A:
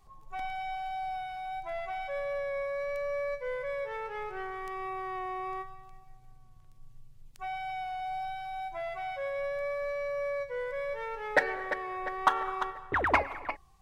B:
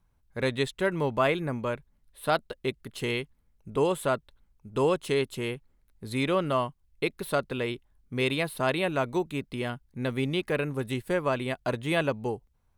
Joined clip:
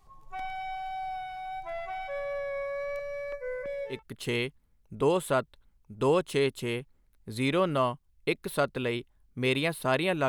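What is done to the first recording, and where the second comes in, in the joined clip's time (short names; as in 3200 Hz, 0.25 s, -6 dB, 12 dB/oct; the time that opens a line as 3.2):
A
2.99–4.03 step phaser 3 Hz 230–2400 Hz
3.95 switch to B from 2.7 s, crossfade 0.16 s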